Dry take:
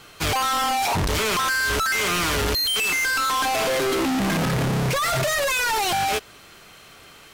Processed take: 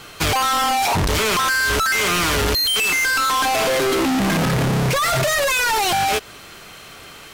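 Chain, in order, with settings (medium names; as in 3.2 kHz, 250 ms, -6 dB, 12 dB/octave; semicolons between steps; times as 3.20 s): compression, threshold -25 dBFS, peak gain reduction 3.5 dB; trim +7 dB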